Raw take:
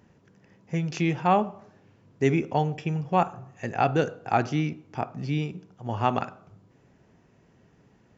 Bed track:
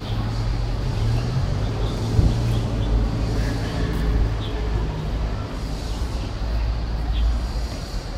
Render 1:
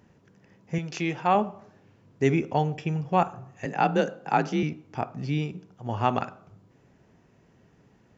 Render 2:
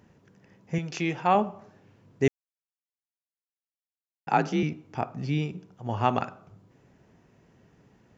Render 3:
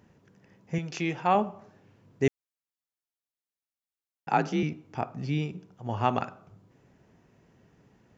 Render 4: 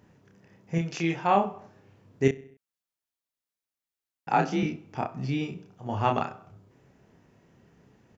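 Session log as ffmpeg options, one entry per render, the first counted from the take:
-filter_complex "[0:a]asettb=1/sr,asplit=3[s0][s1][s2];[s0]atrim=end=0.784[s3];[s1]atrim=start=0.78:end=1.35,asetpts=PTS-STARTPTS,afade=t=in:d=0.004:c=qsin,afade=t=out:st=0.566:d=0.004:c=qsin,highpass=f=300:p=1[s4];[s2]atrim=start=1.346[s5];[s3][s4]acrossfade=d=0.004:c1=hsin:c2=qsin[s6];[s6][s5]acrossfade=d=0.004:c1=qsin:c2=hsin,asettb=1/sr,asplit=3[s7][s8][s9];[s7]atrim=end=3.654[s10];[s8]atrim=start=3.65:end=4.63,asetpts=PTS-STARTPTS,afade=t=in:d=0.004:c=qsin,afade=t=out:st=0.976:d=0.004:c=qsin,afreqshift=38[s11];[s9]atrim=start=4.626[s12];[s10][s11]acrossfade=d=0.004:c1=hsin:c2=qsin[s13];[s13][s12]acrossfade=d=0.004:c1=qsin:c2=hsin"
-filter_complex "[0:a]asplit=3[s0][s1][s2];[s0]atrim=end=2.28,asetpts=PTS-STARTPTS,afade=t=out:st=2.276:d=0.004:c=hsin[s3];[s1]atrim=start=2.28:end=4.27,asetpts=PTS-STARTPTS,volume=0[s4];[s2]atrim=start=4.27,asetpts=PTS-STARTPTS,afade=t=in:d=0.004:c=hsin[s5];[s3][s4][s5]concat=n=3:v=0:a=1"
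-af "volume=0.841"
-filter_complex "[0:a]asplit=2[s0][s1];[s1]adelay=30,volume=0.631[s2];[s0][s2]amix=inputs=2:normalize=0,asplit=2[s3][s4];[s4]adelay=65,lowpass=f=4800:p=1,volume=0.1,asplit=2[s5][s6];[s6]adelay=65,lowpass=f=4800:p=1,volume=0.55,asplit=2[s7][s8];[s8]adelay=65,lowpass=f=4800:p=1,volume=0.55,asplit=2[s9][s10];[s10]adelay=65,lowpass=f=4800:p=1,volume=0.55[s11];[s3][s5][s7][s9][s11]amix=inputs=5:normalize=0"

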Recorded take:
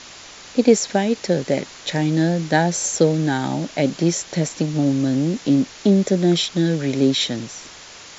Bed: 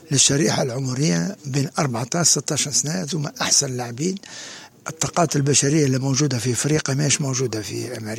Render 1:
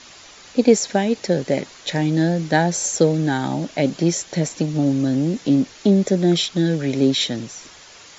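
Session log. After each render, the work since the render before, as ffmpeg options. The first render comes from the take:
-af "afftdn=nr=6:nf=-41"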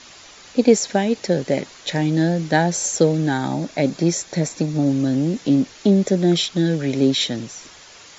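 -filter_complex "[0:a]asettb=1/sr,asplit=3[s0][s1][s2];[s0]atrim=end=3.334[s3];[s1]atrim=start=3.33:end=4.89,asetpts=PTS-STARTPTS,afade=t=in:d=0.004:c=qsin,afade=t=out:st=1.556:d=0.004:c=qsin,bandreject=f=3000:w=7.4[s4];[s2]atrim=start=4.886[s5];[s3][s4]acrossfade=d=0.004:c1=hsin:c2=qsin[s6];[s6][s5]acrossfade=d=0.004:c1=qsin:c2=hsin"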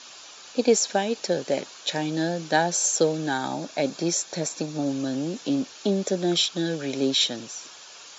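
-af "highpass=f=650:p=1,equalizer=f=2000:t=o:w=0.24:g=-11"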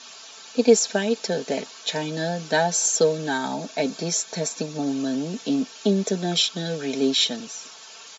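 -af "aecho=1:1:4.5:0.68"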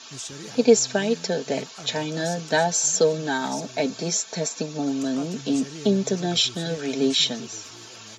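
-filter_complex "[1:a]volume=0.0891[s0];[0:a][s0]amix=inputs=2:normalize=0"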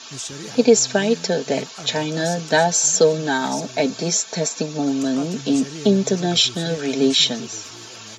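-af "volume=1.68,alimiter=limit=0.708:level=0:latency=1"

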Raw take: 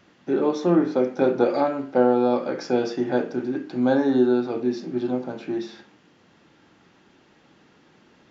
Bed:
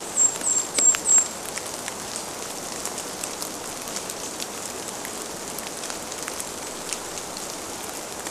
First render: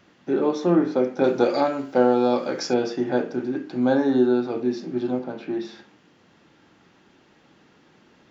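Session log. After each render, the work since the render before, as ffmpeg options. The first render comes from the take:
-filter_complex "[0:a]asettb=1/sr,asplit=3[s0][s1][s2];[s0]atrim=end=1.244[s3];[s1]atrim=start=1.24:end=2.74,asetpts=PTS-STARTPTS,afade=t=in:d=0.004:c=qsin,afade=t=out:st=1.496:d=0.004:c=qsin,aemphasis=mode=production:type=75kf[s4];[s2]atrim=start=2.736[s5];[s3][s4]acrossfade=d=0.004:c1=hsin:c2=qsin[s6];[s6][s5]acrossfade=d=0.004:c1=qsin:c2=hsin,asettb=1/sr,asplit=3[s7][s8][s9];[s7]atrim=end=5.194[s10];[s8]atrim=start=5.19:end=5.65,asetpts=PTS-STARTPTS,afade=t=in:d=0.004:c=qsin,afade=t=out:st=0.456:d=0.004:c=qsin,highpass=120,lowpass=5000[s11];[s9]atrim=start=5.646[s12];[s10][s11]acrossfade=d=0.004:c1=hsin:c2=qsin[s13];[s13][s12]acrossfade=d=0.004:c1=qsin:c2=hsin"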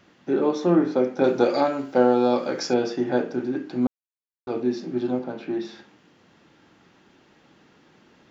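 -filter_complex "[0:a]asplit=3[s0][s1][s2];[s0]atrim=end=3.87,asetpts=PTS-STARTPTS,afade=t=out:st=3.866:d=0.004:c=hsin[s3];[s1]atrim=start=3.87:end=4.47,asetpts=PTS-STARTPTS,volume=0[s4];[s2]atrim=start=4.47,asetpts=PTS-STARTPTS,afade=t=in:d=0.004:c=hsin[s5];[s3][s4][s5]concat=n=3:v=0:a=1"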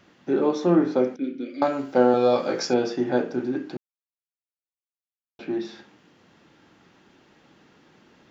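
-filter_complex "[0:a]asettb=1/sr,asplit=3[s0][s1][s2];[s0]atrim=end=1.164[s3];[s1]atrim=start=1.16:end=1.62,asetpts=PTS-STARTPTS,afade=t=in:d=0.004:c=qsin,afade=t=out:st=0.456:d=0.004:c=qsin,asplit=3[s4][s5][s6];[s4]bandpass=f=270:t=q:w=8,volume=1[s7];[s5]bandpass=f=2290:t=q:w=8,volume=0.501[s8];[s6]bandpass=f=3010:t=q:w=8,volume=0.355[s9];[s7][s8][s9]amix=inputs=3:normalize=0[s10];[s2]atrim=start=1.616[s11];[s3][s10]acrossfade=d=0.004:c1=hsin:c2=qsin[s12];[s12][s11]acrossfade=d=0.004:c1=qsin:c2=hsin,asettb=1/sr,asplit=3[s13][s14][s15];[s13]atrim=end=2.124[s16];[s14]atrim=start=2.12:end=2.65,asetpts=PTS-STARTPTS,afade=t=in:d=0.004:c=qsin,afade=t=out:st=0.526:d=0.004:c=qsin,asplit=2[s17][s18];[s18]adelay=18,volume=0.631[s19];[s17][s19]amix=inputs=2:normalize=0,atrim=end_sample=23373[s20];[s15]atrim=start=2.646[s21];[s16][s20]acrossfade=d=0.004:c1=hsin:c2=qsin[s22];[s22][s21]acrossfade=d=0.004:c1=qsin:c2=hsin,asplit=3[s23][s24][s25];[s23]atrim=end=3.77,asetpts=PTS-STARTPTS,afade=t=out:st=3.766:d=0.004:c=hsin[s26];[s24]atrim=start=3.77:end=5.39,asetpts=PTS-STARTPTS,volume=0[s27];[s25]atrim=start=5.39,asetpts=PTS-STARTPTS,afade=t=in:d=0.004:c=hsin[s28];[s26][s27][s28]concat=n=3:v=0:a=1"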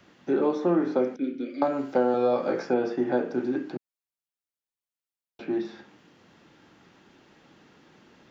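-filter_complex "[0:a]acrossover=split=180|1000|2300[s0][s1][s2][s3];[s0]acompressor=threshold=0.00562:ratio=4[s4];[s1]acompressor=threshold=0.1:ratio=4[s5];[s2]acompressor=threshold=0.0141:ratio=4[s6];[s3]acompressor=threshold=0.00178:ratio=4[s7];[s4][s5][s6][s7]amix=inputs=4:normalize=0"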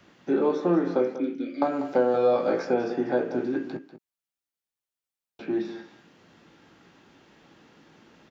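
-filter_complex "[0:a]asplit=2[s0][s1];[s1]adelay=18,volume=0.335[s2];[s0][s2]amix=inputs=2:normalize=0,aecho=1:1:193:0.237"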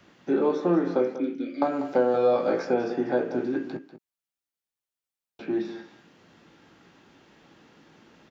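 -af anull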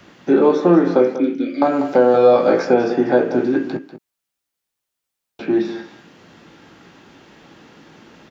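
-af "volume=3.16,alimiter=limit=0.794:level=0:latency=1"

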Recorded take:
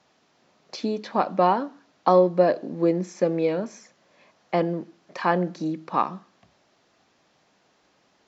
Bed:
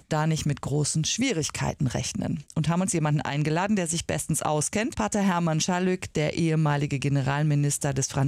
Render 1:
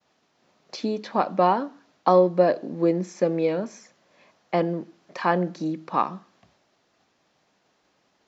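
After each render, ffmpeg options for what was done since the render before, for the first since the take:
-af "agate=range=0.0224:threshold=0.001:ratio=3:detection=peak"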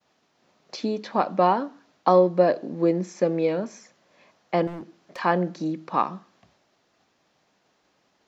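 -filter_complex "[0:a]asettb=1/sr,asplit=3[s0][s1][s2];[s0]atrim=end=4.674[s3];[s1]atrim=start=4.67:end=5.19,asetpts=PTS-STARTPTS,afade=t=in:d=0.004:c=qsin,afade=t=out:st=0.516:d=0.004:c=qsin,asoftclip=type=hard:threshold=0.0224[s4];[s2]atrim=start=5.186[s5];[s3][s4]acrossfade=d=0.004:c1=hsin:c2=qsin[s6];[s6][s5]acrossfade=d=0.004:c1=qsin:c2=hsin"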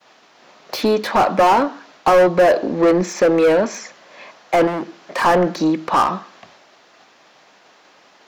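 -filter_complex "[0:a]asplit=2[s0][s1];[s1]highpass=f=720:p=1,volume=20,asoftclip=type=tanh:threshold=0.596[s2];[s0][s2]amix=inputs=2:normalize=0,lowpass=f=3900:p=1,volume=0.501,acrossover=split=1400[s3][s4];[s4]asoftclip=type=hard:threshold=0.0531[s5];[s3][s5]amix=inputs=2:normalize=0"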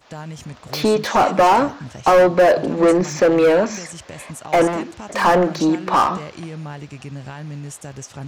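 -filter_complex "[1:a]volume=0.376[s0];[0:a][s0]amix=inputs=2:normalize=0"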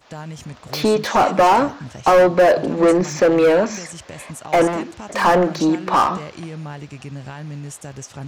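-af anull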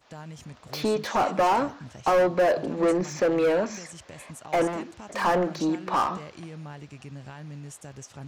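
-af "volume=0.376"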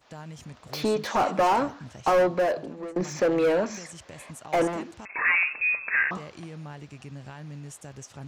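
-filter_complex "[0:a]asettb=1/sr,asplit=3[s0][s1][s2];[s0]atrim=end=5.054[s3];[s1]atrim=start=5.05:end=6.11,asetpts=PTS-STARTPTS,afade=t=in:d=0.004:c=qsin,afade=t=out:st=1.056:d=0.004:c=qsin,lowpass=f=2400:t=q:w=0.5098,lowpass=f=2400:t=q:w=0.6013,lowpass=f=2400:t=q:w=0.9,lowpass=f=2400:t=q:w=2.563,afreqshift=-2800[s4];[s2]atrim=start=6.106[s5];[s3][s4]acrossfade=d=0.004:c1=hsin:c2=qsin[s6];[s6][s5]acrossfade=d=0.004:c1=qsin:c2=hsin,asplit=2[s7][s8];[s7]atrim=end=2.96,asetpts=PTS-STARTPTS,afade=t=out:st=2.22:d=0.74:silence=0.0707946[s9];[s8]atrim=start=2.96,asetpts=PTS-STARTPTS,afade=t=in:d=0.004:c=hsin:silence=0.0707946[s10];[s9][s10]concat=n=2:v=0:a=1"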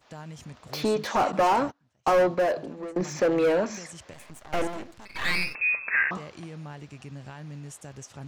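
-filter_complex "[0:a]asettb=1/sr,asplit=3[s0][s1][s2];[s0]atrim=end=1.324[s3];[s1]atrim=start=1.32:end=2.43,asetpts=PTS-STARTPTS,afade=t=in:d=0.004:c=qsin,afade=t=out:st=1.106:d=0.004:c=qsin,agate=range=0.0447:threshold=0.0158:ratio=16:release=100:detection=peak[s4];[s2]atrim=start=2.426[s5];[s3][s4]acrossfade=d=0.004:c1=hsin:c2=qsin[s6];[s6][s5]acrossfade=d=0.004:c1=qsin:c2=hsin,asettb=1/sr,asplit=3[s7][s8][s9];[s7]atrim=end=4.134[s10];[s8]atrim=start=4.13:end=5.55,asetpts=PTS-STARTPTS,afade=t=in:d=0.004:c=qsin,afade=t=out:st=1.416:d=0.004:c=qsin,aeval=exprs='max(val(0),0)':c=same[s11];[s9]atrim=start=5.546[s12];[s10][s11]acrossfade=d=0.004:c1=hsin:c2=qsin[s13];[s13][s12]acrossfade=d=0.004:c1=qsin:c2=hsin"

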